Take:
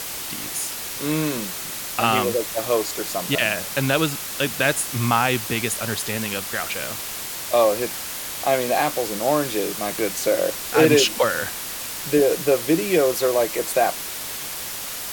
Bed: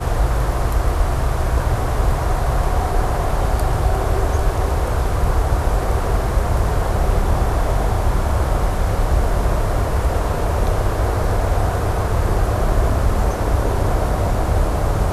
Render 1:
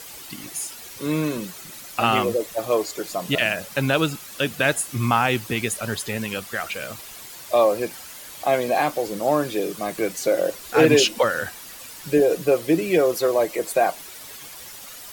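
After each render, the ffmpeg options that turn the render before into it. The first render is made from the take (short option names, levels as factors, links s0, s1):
-af "afftdn=nr=11:nf=-31"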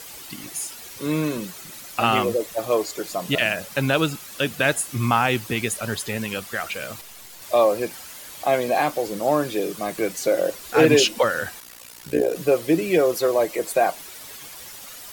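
-filter_complex "[0:a]asettb=1/sr,asplit=3[s0][s1][s2];[s0]atrim=end=7.014[s3];[s1]atrim=start=7.01:end=7.42,asetpts=PTS-STARTPTS,afade=t=in:d=0.004:c=qsin,afade=t=out:st=0.406:d=0.004:c=qsin,aeval=exprs='if(lt(val(0),0),0.251*val(0),val(0))':c=same[s4];[s2]atrim=start=7.416[s5];[s3][s4]acrossfade=d=0.004:c1=hsin:c2=qsin[s6];[s6][s5]acrossfade=d=0.004:c1=qsin:c2=hsin,asettb=1/sr,asplit=3[s7][s8][s9];[s7]atrim=end=11.604[s10];[s8]atrim=start=11.6:end=12.36,asetpts=PTS-STARTPTS,afade=t=in:d=0.004:c=qsin,afade=t=out:st=0.756:d=0.004:c=qsin,tremolo=f=60:d=0.857[s11];[s9]atrim=start=12.356[s12];[s10][s11]acrossfade=d=0.004:c1=hsin:c2=qsin[s13];[s13][s12]acrossfade=d=0.004:c1=qsin:c2=hsin"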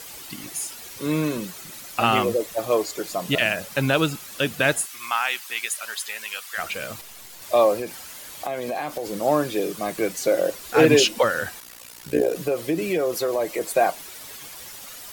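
-filter_complex "[0:a]asplit=3[s0][s1][s2];[s0]afade=t=out:st=4.85:d=0.02[s3];[s1]highpass=1200,afade=t=in:st=4.85:d=0.02,afade=t=out:st=6.57:d=0.02[s4];[s2]afade=t=in:st=6.57:d=0.02[s5];[s3][s4][s5]amix=inputs=3:normalize=0,asettb=1/sr,asplit=3[s6][s7][s8];[s6]atrim=end=7.784[s9];[s7]atrim=start=7.78:end=9.13,asetpts=PTS-STARTPTS,afade=t=in:d=0.004:c=qsin,afade=t=out:st=1.346:d=0.004:c=qsin,acompressor=threshold=0.0631:ratio=6:attack=3.2:release=140:knee=1:detection=peak[s10];[s8]atrim=start=9.126[s11];[s9][s10]acrossfade=d=0.004:c1=hsin:c2=qsin[s12];[s12][s11]acrossfade=d=0.004:c1=qsin:c2=hsin,asettb=1/sr,asplit=3[s13][s14][s15];[s13]atrim=end=12.344[s16];[s14]atrim=start=12.34:end=13.61,asetpts=PTS-STARTPTS,afade=t=in:d=0.004:c=qsin,afade=t=out:st=1.266:d=0.004:c=qsin,acompressor=threshold=0.1:ratio=3:attack=3.2:release=140:knee=1:detection=peak[s17];[s15]atrim=start=13.606[s18];[s16][s17]acrossfade=d=0.004:c1=hsin:c2=qsin[s19];[s19][s18]acrossfade=d=0.004:c1=qsin:c2=hsin"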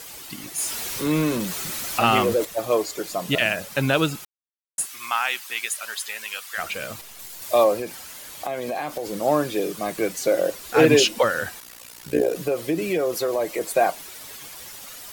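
-filter_complex "[0:a]asettb=1/sr,asplit=3[s0][s1][s2];[s0]atrim=end=0.584[s3];[s1]atrim=start=0.58:end=2.45,asetpts=PTS-STARTPTS,afade=t=in:d=0.004:c=qsin,afade=t=out:st=1.866:d=0.004:c=qsin,aeval=exprs='val(0)+0.5*0.0422*sgn(val(0))':c=same[s4];[s2]atrim=start=2.446[s5];[s3][s4]acrossfade=d=0.004:c1=hsin:c2=qsin[s6];[s6][s5]acrossfade=d=0.004:c1=qsin:c2=hsin,asettb=1/sr,asplit=3[s7][s8][s9];[s7]atrim=end=7.194[s10];[s8]atrim=start=7.19:end=7.64,asetpts=PTS-STARTPTS,afade=t=in:d=0.004:c=qsin,afade=t=out:st=0.446:d=0.004:c=qsin,highshelf=f=6000:g=6[s11];[s9]atrim=start=7.636[s12];[s10][s11]acrossfade=d=0.004:c1=hsin:c2=qsin[s13];[s13][s12]acrossfade=d=0.004:c1=qsin:c2=hsin,asplit=3[s14][s15][s16];[s14]atrim=end=4.25,asetpts=PTS-STARTPTS,afade=t=out:st=4.246:d=0.004:c=hsin[s17];[s15]atrim=start=4.25:end=4.78,asetpts=PTS-STARTPTS,volume=0[s18];[s16]atrim=start=4.78,asetpts=PTS-STARTPTS,afade=t=in:d=0.004:c=hsin[s19];[s17][s18][s19]concat=n=3:v=0:a=1"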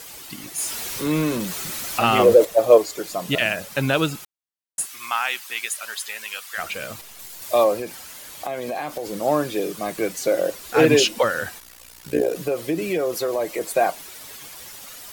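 -filter_complex "[0:a]asettb=1/sr,asplit=3[s0][s1][s2];[s0]atrim=end=2.194[s3];[s1]atrim=start=2.19:end=2.78,asetpts=PTS-STARTPTS,afade=t=in:d=0.004:c=qsin,afade=t=out:st=0.586:d=0.004:c=qsin,equalizer=f=540:t=o:w=0.97:g=11[s4];[s2]atrim=start=2.776[s5];[s3][s4]acrossfade=d=0.004:c1=hsin:c2=qsin[s6];[s6][s5]acrossfade=d=0.004:c1=qsin:c2=hsin,asettb=1/sr,asplit=3[s7][s8][s9];[s7]atrim=end=11.584[s10];[s8]atrim=start=11.58:end=12.05,asetpts=PTS-STARTPTS,afade=t=in:d=0.004:c=qsin,afade=t=out:st=0.466:d=0.004:c=qsin,aeval=exprs='if(lt(val(0),0),0.447*val(0),val(0))':c=same[s11];[s9]atrim=start=12.046[s12];[s10][s11]acrossfade=d=0.004:c1=hsin:c2=qsin[s13];[s13][s12]acrossfade=d=0.004:c1=qsin:c2=hsin"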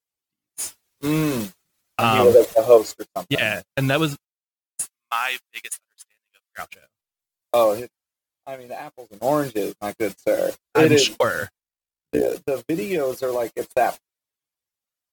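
-af "agate=range=0.00316:threshold=0.0501:ratio=16:detection=peak,equalizer=f=81:t=o:w=1.3:g=5.5"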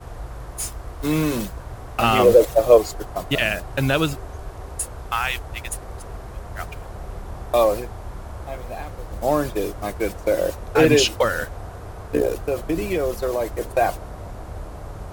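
-filter_complex "[1:a]volume=0.15[s0];[0:a][s0]amix=inputs=2:normalize=0"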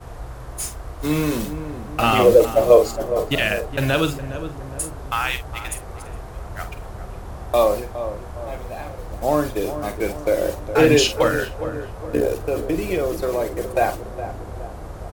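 -filter_complex "[0:a]asplit=2[s0][s1];[s1]adelay=47,volume=0.316[s2];[s0][s2]amix=inputs=2:normalize=0,asplit=2[s3][s4];[s4]adelay=414,lowpass=f=1100:p=1,volume=0.316,asplit=2[s5][s6];[s6]adelay=414,lowpass=f=1100:p=1,volume=0.53,asplit=2[s7][s8];[s8]adelay=414,lowpass=f=1100:p=1,volume=0.53,asplit=2[s9][s10];[s10]adelay=414,lowpass=f=1100:p=1,volume=0.53,asplit=2[s11][s12];[s12]adelay=414,lowpass=f=1100:p=1,volume=0.53,asplit=2[s13][s14];[s14]adelay=414,lowpass=f=1100:p=1,volume=0.53[s15];[s3][s5][s7][s9][s11][s13][s15]amix=inputs=7:normalize=0"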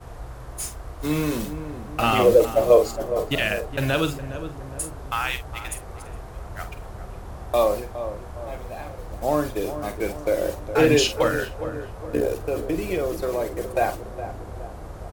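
-af "volume=0.708"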